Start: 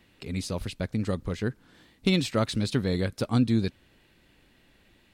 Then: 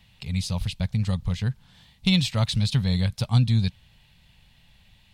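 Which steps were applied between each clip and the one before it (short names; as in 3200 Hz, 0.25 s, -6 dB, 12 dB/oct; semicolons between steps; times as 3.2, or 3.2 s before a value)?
EQ curve 130 Hz 0 dB, 180 Hz -3 dB, 320 Hz -25 dB, 870 Hz -5 dB, 1400 Hz -13 dB, 3300 Hz -1 dB, 7700 Hz -6 dB; gain +8 dB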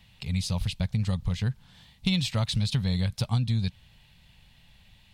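compressor, threshold -22 dBFS, peak gain reduction 8 dB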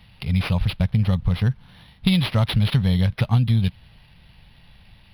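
decimation joined by straight lines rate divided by 6×; gain +7.5 dB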